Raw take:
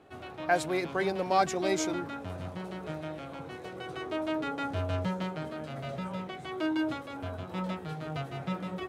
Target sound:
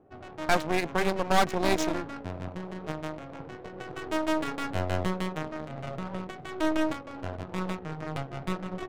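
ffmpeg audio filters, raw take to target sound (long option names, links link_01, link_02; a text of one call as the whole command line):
ffmpeg -i in.wav -af "aeval=exprs='0.237*(cos(1*acos(clip(val(0)/0.237,-1,1)))-cos(1*PI/2))+0.0668*(cos(6*acos(clip(val(0)/0.237,-1,1)))-cos(6*PI/2))':channel_layout=same,adynamicsmooth=sensitivity=8:basefreq=680" out.wav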